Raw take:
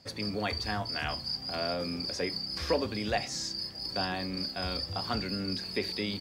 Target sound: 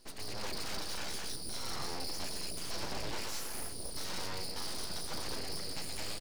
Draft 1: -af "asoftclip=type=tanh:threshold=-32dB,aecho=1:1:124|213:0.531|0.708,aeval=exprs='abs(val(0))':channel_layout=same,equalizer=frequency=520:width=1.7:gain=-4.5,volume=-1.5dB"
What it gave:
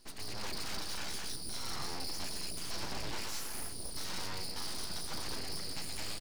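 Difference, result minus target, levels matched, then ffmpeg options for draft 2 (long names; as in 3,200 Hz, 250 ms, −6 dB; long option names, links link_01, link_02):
500 Hz band −3.0 dB
-af "asoftclip=type=tanh:threshold=-32dB,aecho=1:1:124|213:0.531|0.708,aeval=exprs='abs(val(0))':channel_layout=same,volume=-1.5dB"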